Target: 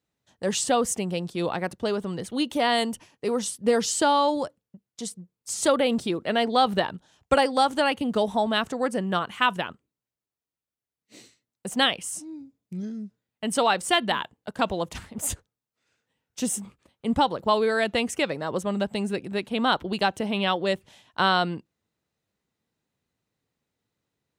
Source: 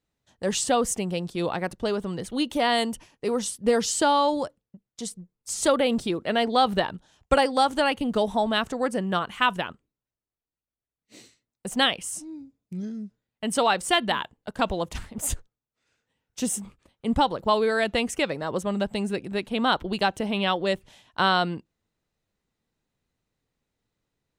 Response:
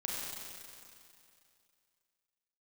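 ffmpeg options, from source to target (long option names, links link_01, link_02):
-af "highpass=80"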